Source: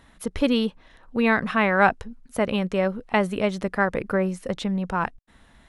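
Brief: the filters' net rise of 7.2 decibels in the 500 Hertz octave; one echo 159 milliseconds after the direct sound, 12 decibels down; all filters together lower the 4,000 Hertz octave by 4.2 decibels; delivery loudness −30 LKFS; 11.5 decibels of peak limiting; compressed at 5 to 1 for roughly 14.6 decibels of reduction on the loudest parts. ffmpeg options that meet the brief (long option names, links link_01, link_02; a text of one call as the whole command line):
ffmpeg -i in.wav -af "equalizer=frequency=500:width_type=o:gain=9,equalizer=frequency=4000:width_type=o:gain=-6.5,acompressor=threshold=-29dB:ratio=5,alimiter=level_in=4dB:limit=-24dB:level=0:latency=1,volume=-4dB,aecho=1:1:159:0.251,volume=8dB" out.wav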